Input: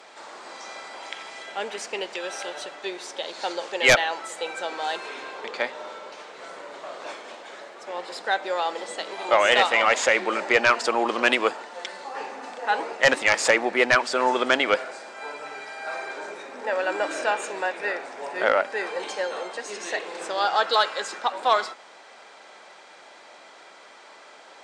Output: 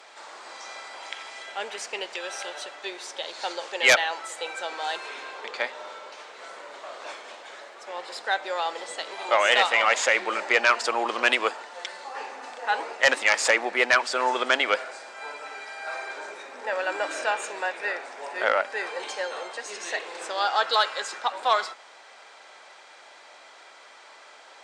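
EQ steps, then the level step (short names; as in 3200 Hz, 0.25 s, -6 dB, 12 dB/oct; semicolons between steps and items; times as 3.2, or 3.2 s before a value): HPF 630 Hz 6 dB/oct; 0.0 dB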